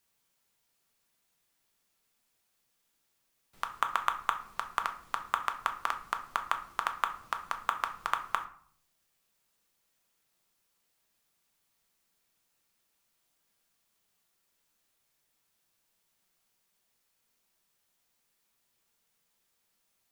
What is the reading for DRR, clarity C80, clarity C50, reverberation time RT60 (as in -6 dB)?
5.5 dB, 16.5 dB, 12.5 dB, 0.55 s